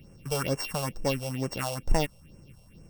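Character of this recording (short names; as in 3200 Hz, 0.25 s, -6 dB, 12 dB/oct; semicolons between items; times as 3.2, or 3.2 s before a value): a buzz of ramps at a fixed pitch in blocks of 16 samples; phasing stages 4, 2.2 Hz, lowest notch 280–3700 Hz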